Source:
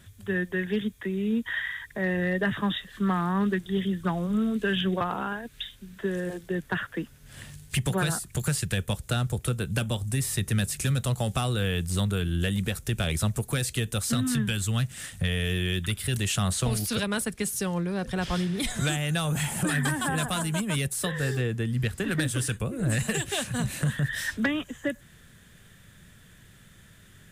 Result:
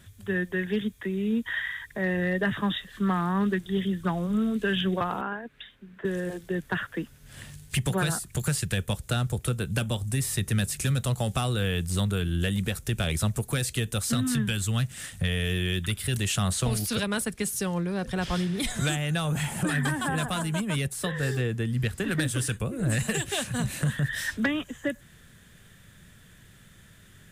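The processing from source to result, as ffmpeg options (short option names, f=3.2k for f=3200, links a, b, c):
-filter_complex "[0:a]asettb=1/sr,asplit=3[a][b][c];[a]atrim=end=5.214[d];[b]atrim=start=5.21:end=6.05,asetpts=PTS-STARTPTS,afade=t=in:d=0.004:c=qsin,afade=t=out:st=0.836:d=0.004:c=qsin,acrossover=split=170 2700:gain=0.251 1 0.1[e][f][g];[e][f][g]amix=inputs=3:normalize=0[h];[c]atrim=start=6.046[i];[d][h]acrossfade=d=0.004:c1=hsin:c2=qsin[j];[j][i]acrossfade=d=0.004:c1=qsin:c2=hsin,asettb=1/sr,asplit=3[k][l][m];[k]atrim=end=18.954[n];[l]atrim=start=18.95:end=21.23,asetpts=PTS-STARTPTS,afade=t=in:d=0.004:c=qsin,afade=t=out:st=2.276:d=0.004:c=qsin,highshelf=f=5k:g=-5.5[o];[m]atrim=start=21.226[p];[n][o]acrossfade=d=0.004:c1=hsin:c2=qsin[q];[q][p]acrossfade=d=0.004:c1=qsin:c2=hsin"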